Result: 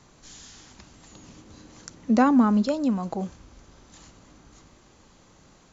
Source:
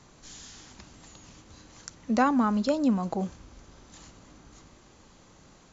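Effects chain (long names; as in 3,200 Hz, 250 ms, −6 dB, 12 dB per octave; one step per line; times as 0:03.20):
0:01.11–0:02.66: parametric band 270 Hz +6.5 dB 2.1 octaves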